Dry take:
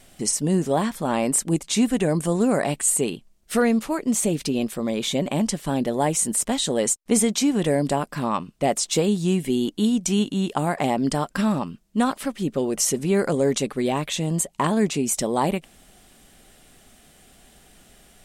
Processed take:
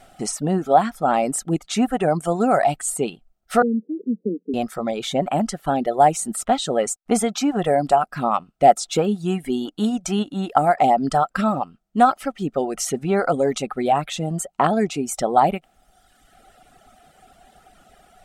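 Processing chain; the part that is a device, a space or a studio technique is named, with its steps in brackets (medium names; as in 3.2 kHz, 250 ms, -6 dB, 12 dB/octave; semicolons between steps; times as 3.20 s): 3.62–4.54 s: Chebyshev band-pass 180–490 Hz, order 5; inside a helmet (treble shelf 5.6 kHz -6.5 dB; small resonant body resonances 740/1300 Hz, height 15 dB, ringing for 25 ms); reverb removal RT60 1.2 s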